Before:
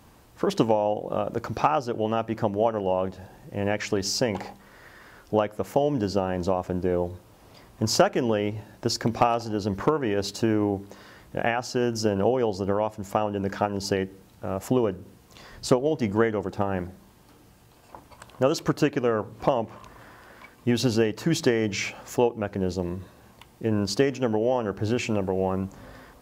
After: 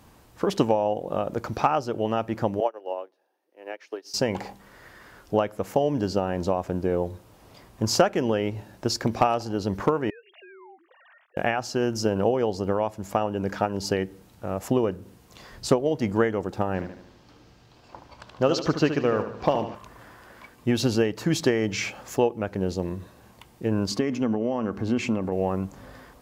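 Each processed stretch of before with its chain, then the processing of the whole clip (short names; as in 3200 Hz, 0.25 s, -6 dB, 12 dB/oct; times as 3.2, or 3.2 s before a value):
2.6–4.14 steep high-pass 310 Hz + bell 7400 Hz -12 dB 0.22 oct + upward expander 2.5:1, over -35 dBFS
10.1–11.37 sine-wave speech + HPF 870 Hz + compressor 2.5:1, threshold -51 dBFS
16.74–19.75 block floating point 7-bit + resonant high shelf 7300 Hz -13 dB, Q 1.5 + feedback echo 74 ms, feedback 51%, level -9.5 dB
23.91–25.32 high shelf 8200 Hz -5.5 dB + compressor 2:1, threshold -27 dBFS + small resonant body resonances 240/1100/2100 Hz, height 10 dB
whole clip: dry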